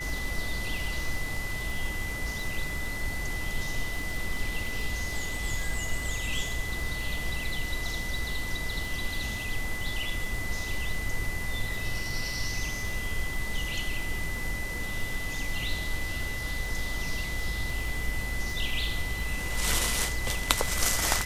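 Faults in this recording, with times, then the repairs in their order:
surface crackle 45 per second −35 dBFS
whistle 2,000 Hz −35 dBFS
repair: click removal
notch filter 2,000 Hz, Q 30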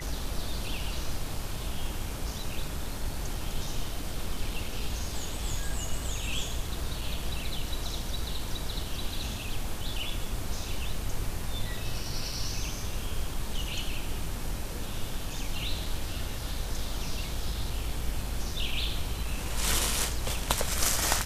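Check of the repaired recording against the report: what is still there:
none of them is left

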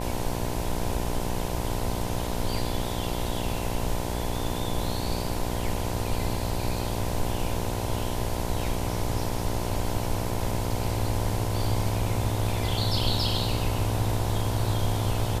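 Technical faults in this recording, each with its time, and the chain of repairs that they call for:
mains buzz 60 Hz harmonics 17 −32 dBFS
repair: hum removal 60 Hz, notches 17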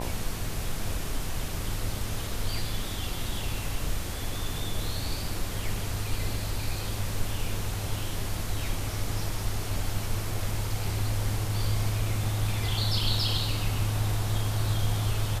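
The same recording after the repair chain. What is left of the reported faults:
none of them is left

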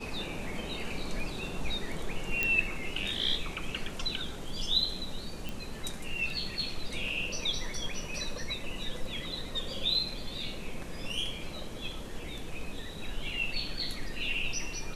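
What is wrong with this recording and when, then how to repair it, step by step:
0:02.43: click −13 dBFS
0:05.49: click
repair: click removal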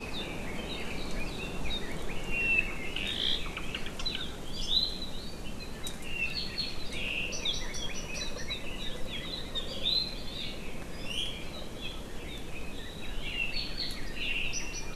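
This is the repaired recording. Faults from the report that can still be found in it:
none of them is left

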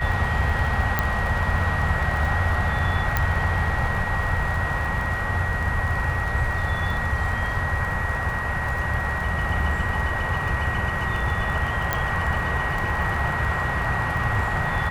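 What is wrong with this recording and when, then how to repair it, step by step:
surface crackle 43 per second −30 dBFS
whistle 1,900 Hz −28 dBFS
0:00.99: click −7 dBFS
0:03.17: click −7 dBFS
0:11.93: click −7 dBFS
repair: click removal
notch filter 1,900 Hz, Q 30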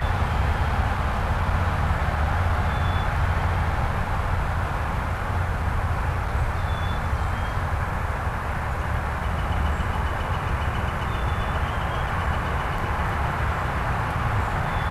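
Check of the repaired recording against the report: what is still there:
0:03.17: click

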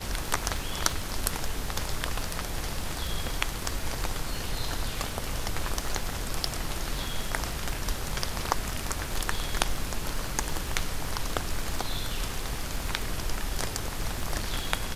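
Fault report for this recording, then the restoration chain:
surface crackle 31 per second −33 dBFS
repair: click removal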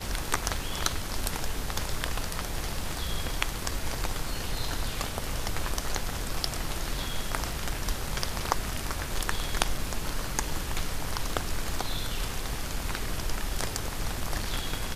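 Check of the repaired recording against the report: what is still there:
none of them is left

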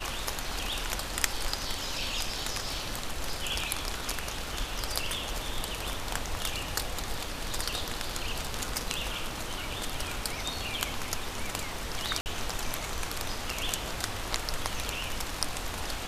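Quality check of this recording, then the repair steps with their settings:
0:12.21–0:12.26: drop-out 49 ms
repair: repair the gap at 0:12.21, 49 ms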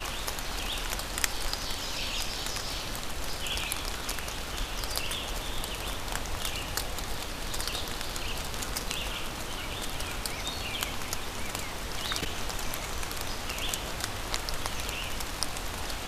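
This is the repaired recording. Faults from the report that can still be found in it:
none of them is left

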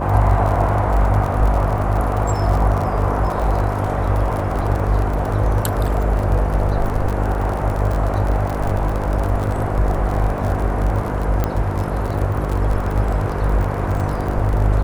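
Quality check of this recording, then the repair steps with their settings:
mains buzz 50 Hz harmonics 11 −23 dBFS
surface crackle 39 per second −22 dBFS
0:11.44: click −7 dBFS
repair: click removal
hum removal 50 Hz, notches 11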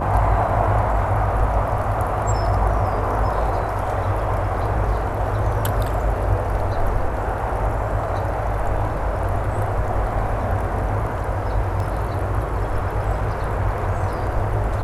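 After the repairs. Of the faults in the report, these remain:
none of them is left

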